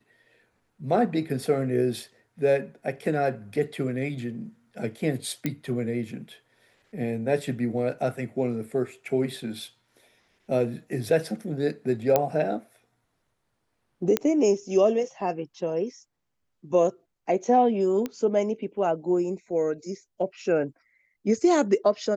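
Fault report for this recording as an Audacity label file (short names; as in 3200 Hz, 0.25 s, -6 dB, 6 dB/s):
5.460000	5.460000	pop -13 dBFS
12.160000	12.160000	pop -7 dBFS
14.170000	14.170000	pop -8 dBFS
18.060000	18.060000	pop -17 dBFS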